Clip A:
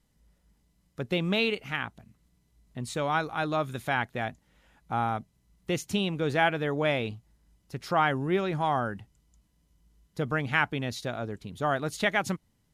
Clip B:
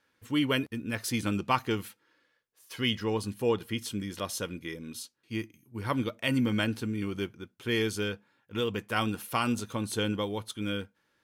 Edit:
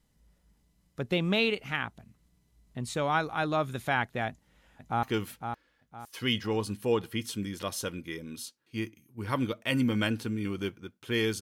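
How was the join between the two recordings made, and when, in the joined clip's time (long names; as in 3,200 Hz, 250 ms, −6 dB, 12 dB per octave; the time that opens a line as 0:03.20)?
clip A
0:04.28–0:05.03: delay throw 510 ms, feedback 35%, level −6.5 dB
0:05.03: continue with clip B from 0:01.60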